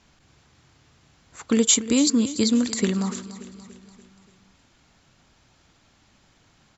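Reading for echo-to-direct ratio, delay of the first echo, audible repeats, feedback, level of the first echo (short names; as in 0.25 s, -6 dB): -13.5 dB, 0.289 s, 4, 53%, -15.0 dB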